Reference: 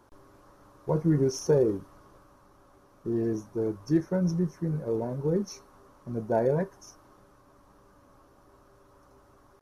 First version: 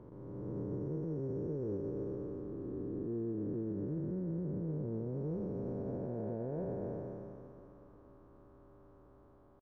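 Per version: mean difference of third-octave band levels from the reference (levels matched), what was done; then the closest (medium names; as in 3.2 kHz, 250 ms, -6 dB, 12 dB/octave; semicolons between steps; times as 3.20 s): 9.5 dB: spectral blur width 1060 ms; FFT filter 350 Hz 0 dB, 3.8 kHz -17 dB, 6 kHz -28 dB; peak limiter -33.5 dBFS, peak gain reduction 9 dB; delay 1002 ms -23.5 dB; trim +2 dB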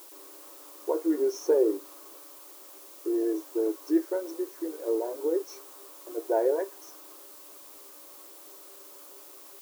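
13.0 dB: tilt EQ -2 dB/octave; in parallel at -0.5 dB: compression, threshold -29 dBFS, peak gain reduction 13.5 dB; on the sum: added noise blue -46 dBFS; brick-wall FIR high-pass 290 Hz; trim -3.5 dB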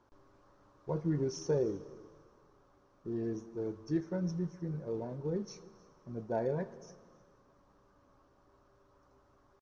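2.5 dB: low-pass 6.6 kHz 24 dB/octave; dynamic bell 3.6 kHz, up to +4 dB, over -52 dBFS, Q 1; delay 308 ms -23 dB; Schroeder reverb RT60 2.1 s, combs from 27 ms, DRR 17 dB; trim -8.5 dB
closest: third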